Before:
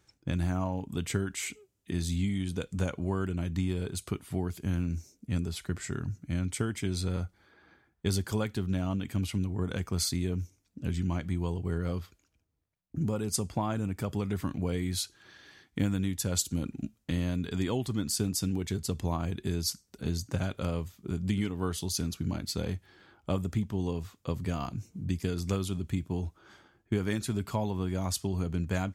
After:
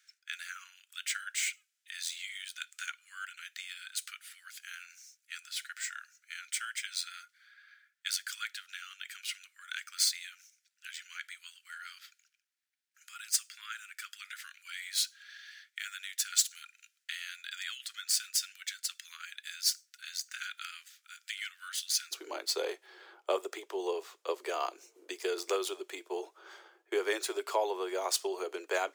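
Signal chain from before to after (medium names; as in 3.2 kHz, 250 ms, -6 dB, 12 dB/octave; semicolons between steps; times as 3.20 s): median filter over 3 samples; steep high-pass 1.4 kHz 72 dB/octave, from 22.11 s 360 Hz; trim +4.5 dB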